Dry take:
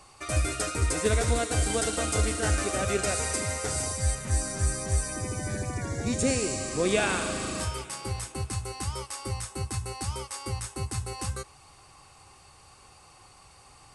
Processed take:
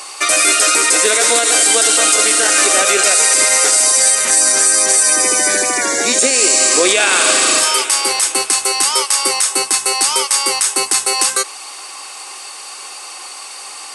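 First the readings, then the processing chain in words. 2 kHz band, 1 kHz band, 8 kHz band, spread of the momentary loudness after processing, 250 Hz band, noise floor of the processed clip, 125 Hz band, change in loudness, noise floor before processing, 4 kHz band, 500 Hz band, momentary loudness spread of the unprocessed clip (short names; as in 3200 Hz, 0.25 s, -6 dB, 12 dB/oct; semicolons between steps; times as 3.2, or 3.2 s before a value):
+18.5 dB, +16.0 dB, +22.5 dB, 20 LU, +6.0 dB, -32 dBFS, under -15 dB, +18.5 dB, -55 dBFS, +22.0 dB, +11.5 dB, 9 LU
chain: HPF 310 Hz 24 dB/oct; tilt shelf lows -6 dB, about 1300 Hz; maximiser +22 dB; gain -1 dB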